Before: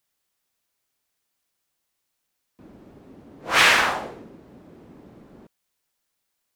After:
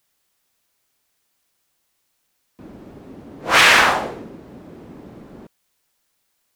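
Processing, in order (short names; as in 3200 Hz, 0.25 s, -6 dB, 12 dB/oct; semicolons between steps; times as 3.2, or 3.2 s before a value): maximiser +8.5 dB; gain -1 dB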